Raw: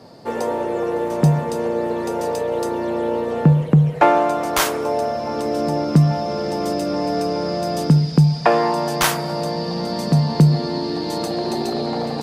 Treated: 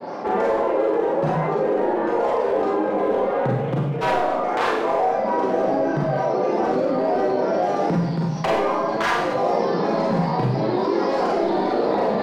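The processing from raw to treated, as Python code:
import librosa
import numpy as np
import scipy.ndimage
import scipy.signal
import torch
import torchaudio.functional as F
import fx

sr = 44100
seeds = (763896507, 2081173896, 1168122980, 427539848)

y = scipy.signal.sosfilt(scipy.signal.butter(2, 310.0, 'highpass', fs=sr, output='sos'), x)
y = fx.dereverb_blind(y, sr, rt60_s=0.92)
y = scipy.signal.sosfilt(scipy.signal.butter(2, 1900.0, 'lowpass', fs=sr, output='sos'), y)
y = fx.rider(y, sr, range_db=4, speed_s=0.5)
y = np.clip(y, -10.0 ** (-19.0 / 20.0), 10.0 ** (-19.0 / 20.0))
y = fx.granulator(y, sr, seeds[0], grain_ms=100.0, per_s=20.0, spray_ms=17.0, spread_st=3)
y = y + 10.0 ** (-18.5 / 20.0) * np.pad(y, (int(224 * sr / 1000.0), 0))[:len(y)]
y = fx.rev_schroeder(y, sr, rt60_s=0.66, comb_ms=32, drr_db=-5.0)
y = fx.env_flatten(y, sr, amount_pct=50)
y = F.gain(torch.from_numpy(y), -2.5).numpy()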